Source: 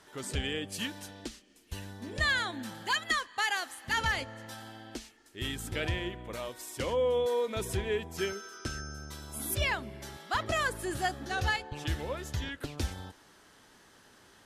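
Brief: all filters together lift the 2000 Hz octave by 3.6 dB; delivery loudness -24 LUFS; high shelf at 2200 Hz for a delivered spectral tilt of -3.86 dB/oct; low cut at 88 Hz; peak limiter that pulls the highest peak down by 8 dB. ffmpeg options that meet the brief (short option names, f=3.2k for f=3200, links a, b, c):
-af "highpass=88,equalizer=f=2k:t=o:g=6.5,highshelf=f=2.2k:g=-4.5,volume=10.5dB,alimiter=limit=-12.5dB:level=0:latency=1"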